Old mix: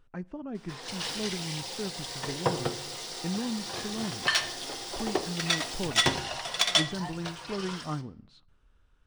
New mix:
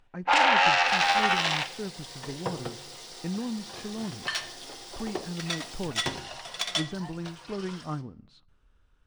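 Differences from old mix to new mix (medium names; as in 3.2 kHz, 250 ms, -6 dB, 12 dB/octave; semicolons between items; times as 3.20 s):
first sound: unmuted; second sound -5.5 dB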